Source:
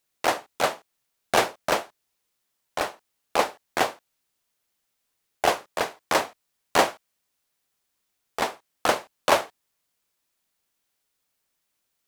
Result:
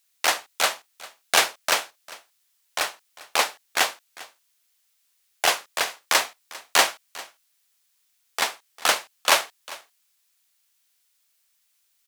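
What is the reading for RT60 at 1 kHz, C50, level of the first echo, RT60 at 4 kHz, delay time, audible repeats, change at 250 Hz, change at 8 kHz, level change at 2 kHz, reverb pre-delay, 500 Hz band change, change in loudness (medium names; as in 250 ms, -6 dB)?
no reverb, no reverb, -20.0 dB, no reverb, 399 ms, 1, -9.0 dB, +8.5 dB, +4.5 dB, no reverb, -5.0 dB, +3.0 dB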